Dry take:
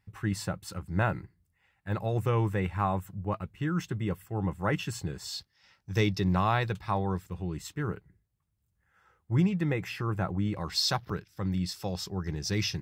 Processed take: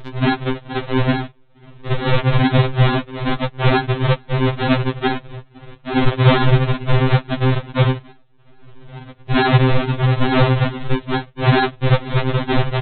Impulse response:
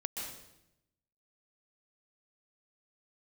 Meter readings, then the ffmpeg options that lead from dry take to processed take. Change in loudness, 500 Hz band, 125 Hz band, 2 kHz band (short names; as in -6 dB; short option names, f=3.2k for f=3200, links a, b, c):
+13.0 dB, +14.0 dB, +14.5 dB, +14.5 dB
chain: -af "afftfilt=real='hypot(re,im)*cos(PI*b)':imag='0':win_size=1024:overlap=0.75,aresample=8000,acrusher=samples=25:mix=1:aa=0.000001:lfo=1:lforange=25:lforate=2.3,aresample=44100,acompressor=mode=upward:threshold=-45dB:ratio=2.5,alimiter=level_in=25.5dB:limit=-1dB:release=50:level=0:latency=1,afftfilt=real='re*2.45*eq(mod(b,6),0)':imag='im*2.45*eq(mod(b,6),0)':win_size=2048:overlap=0.75"